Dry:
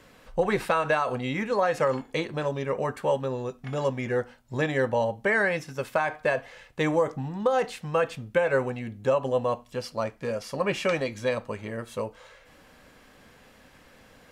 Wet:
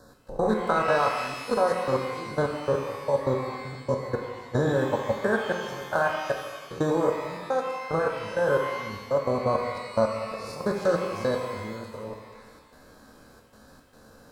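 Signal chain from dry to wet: stepped spectrum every 0.1 s; elliptic band-stop 1600–3900 Hz; level quantiser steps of 15 dB; transient shaper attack +2 dB, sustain -11 dB; step gate "x.xx.xxxx" 112 bpm; shimmer reverb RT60 1.3 s, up +12 st, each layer -8 dB, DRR 2.5 dB; gain +6 dB

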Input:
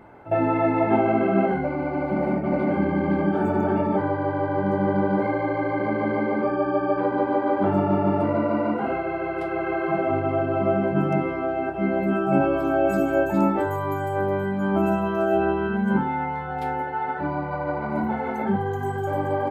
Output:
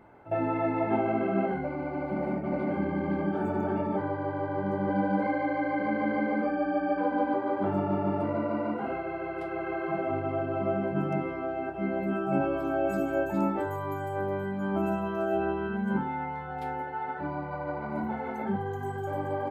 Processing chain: 4.89–7.34 comb 3.9 ms, depth 79%; gain -7 dB

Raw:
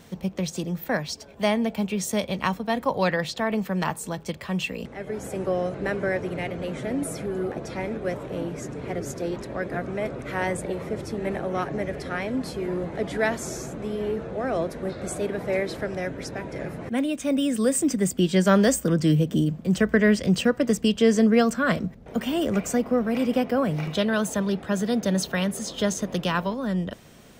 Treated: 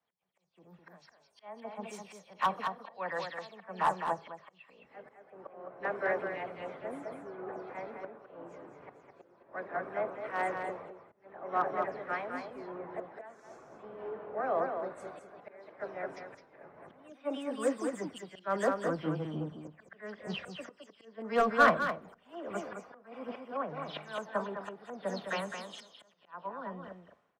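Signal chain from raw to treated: spectral delay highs early, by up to 0.125 s; auto swell 0.376 s; in parallel at -7 dB: soft clip -23 dBFS, distortion -10 dB; on the sum: band-pass 1000 Hz, Q 1.6; overloaded stage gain 21 dB; echo 0.212 s -4 dB; on a send at -21.5 dB: reverb RT60 1.2 s, pre-delay 5 ms; on the sum: three-band expander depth 100%; gain -4 dB

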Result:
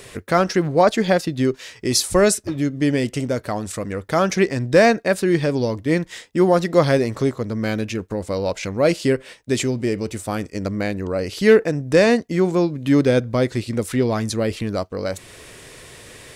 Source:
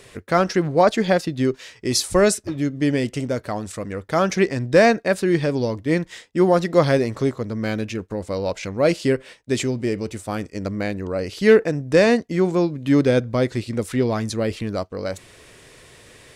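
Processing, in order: high shelf 11000 Hz +6.5 dB; in parallel at -2 dB: compressor, threshold -34 dBFS, peak gain reduction 23.5 dB

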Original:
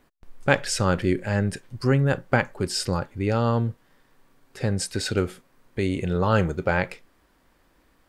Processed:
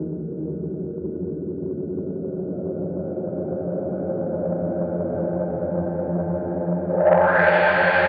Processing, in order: Paulstretch 29×, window 0.25 s, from 6.52; speaker cabinet 200–8600 Hz, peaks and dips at 280 Hz -8 dB, 420 Hz -4 dB, 620 Hz +6 dB, 2400 Hz -9 dB, 4300 Hz +4 dB; low-pass sweep 300 Hz -> 2900 Hz, 6.87–7.55; echo 0.412 s -6 dB; core saturation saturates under 600 Hz; gain +3.5 dB

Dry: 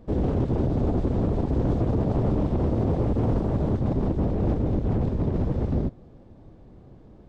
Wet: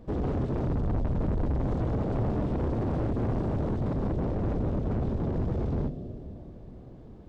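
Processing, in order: 0.69–1.64 low shelf 120 Hz +11.5 dB; soft clip -25.5 dBFS, distortion -6 dB; on a send: brick-wall FIR band-stop 750–2600 Hz + reverb RT60 4.0 s, pre-delay 28 ms, DRR 11 dB

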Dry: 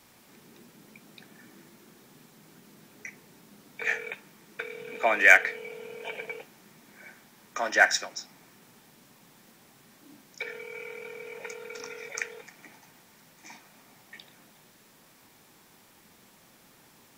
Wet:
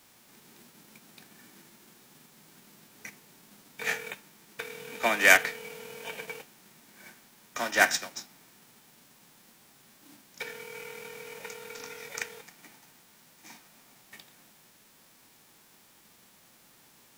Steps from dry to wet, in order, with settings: spectral whitening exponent 0.6; bit-crush 10-bit; gain -2 dB

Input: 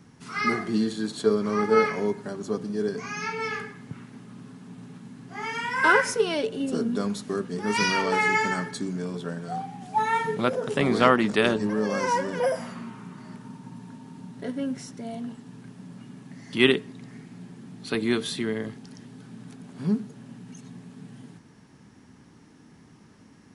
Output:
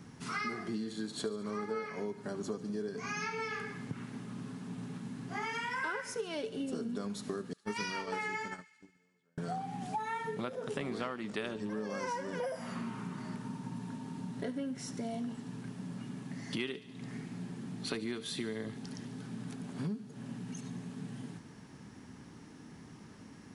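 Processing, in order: 7.53–9.38 gate -24 dBFS, range -45 dB; compressor 12:1, threshold -35 dBFS, peak gain reduction 22.5 dB; thin delay 72 ms, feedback 73%, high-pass 2300 Hz, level -16 dB; gain +1 dB

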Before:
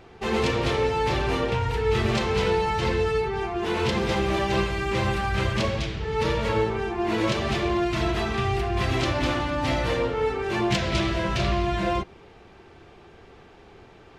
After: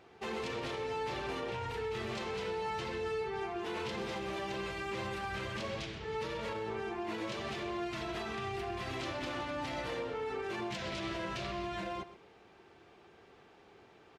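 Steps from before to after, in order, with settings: HPF 220 Hz 6 dB/oct; limiter -21.5 dBFS, peak gain reduction 8 dB; on a send: echo 0.127 s -15 dB; on the sum: gain -8.5 dB

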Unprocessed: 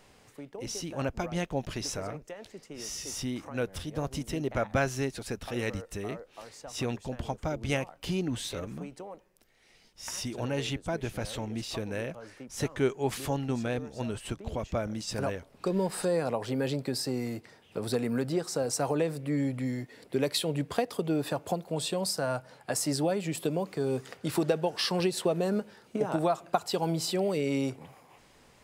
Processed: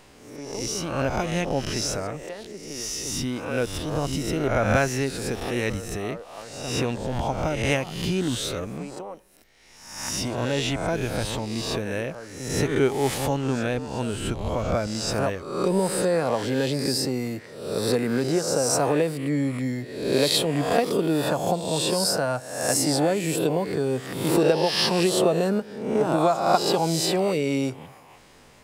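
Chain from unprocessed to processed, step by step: spectral swells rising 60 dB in 0.81 s; gain +4.5 dB

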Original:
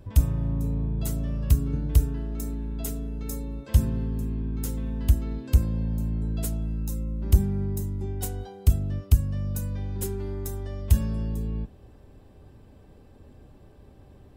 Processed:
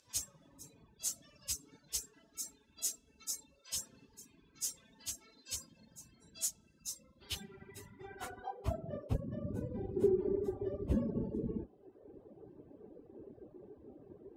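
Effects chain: phase scrambler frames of 50 ms; reverb removal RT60 1.2 s; band-pass sweep 6200 Hz -> 380 Hz, 6.81–9.38; gain +8.5 dB

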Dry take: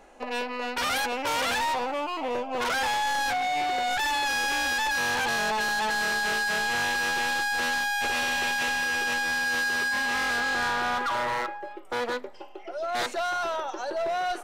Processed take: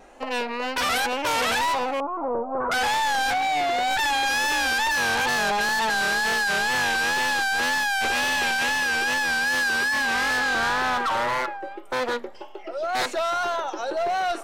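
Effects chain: 2–2.72 Chebyshev low-pass 1300 Hz, order 4; wow and flutter 90 cents; gain +3.5 dB

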